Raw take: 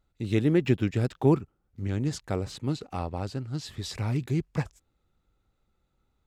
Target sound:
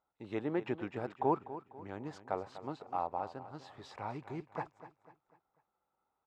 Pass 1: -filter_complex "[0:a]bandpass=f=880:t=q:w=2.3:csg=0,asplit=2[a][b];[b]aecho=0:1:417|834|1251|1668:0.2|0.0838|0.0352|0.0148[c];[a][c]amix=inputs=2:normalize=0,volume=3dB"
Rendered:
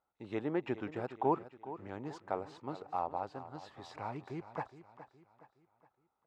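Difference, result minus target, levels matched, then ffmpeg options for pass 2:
echo 0.17 s late
-filter_complex "[0:a]bandpass=f=880:t=q:w=2.3:csg=0,asplit=2[a][b];[b]aecho=0:1:247|494|741|988:0.2|0.0838|0.0352|0.0148[c];[a][c]amix=inputs=2:normalize=0,volume=3dB"

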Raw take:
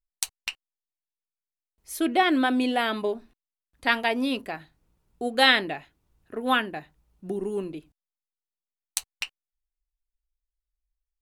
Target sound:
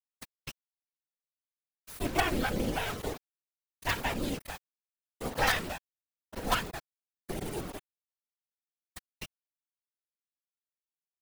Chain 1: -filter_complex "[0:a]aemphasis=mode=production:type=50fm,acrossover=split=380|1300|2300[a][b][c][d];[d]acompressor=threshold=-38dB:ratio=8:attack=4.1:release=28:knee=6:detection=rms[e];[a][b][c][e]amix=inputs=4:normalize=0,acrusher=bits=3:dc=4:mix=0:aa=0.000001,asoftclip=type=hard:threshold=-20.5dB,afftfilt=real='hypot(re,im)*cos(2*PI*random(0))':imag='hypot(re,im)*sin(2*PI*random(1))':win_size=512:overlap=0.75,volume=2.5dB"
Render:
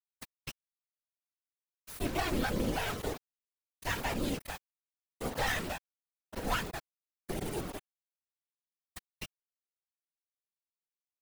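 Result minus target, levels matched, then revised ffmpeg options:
hard clip: distortion +10 dB
-filter_complex "[0:a]aemphasis=mode=production:type=50fm,acrossover=split=380|1300|2300[a][b][c][d];[d]acompressor=threshold=-38dB:ratio=8:attack=4.1:release=28:knee=6:detection=rms[e];[a][b][c][e]amix=inputs=4:normalize=0,acrusher=bits=3:dc=4:mix=0:aa=0.000001,asoftclip=type=hard:threshold=-9dB,afftfilt=real='hypot(re,im)*cos(2*PI*random(0))':imag='hypot(re,im)*sin(2*PI*random(1))':win_size=512:overlap=0.75,volume=2.5dB"

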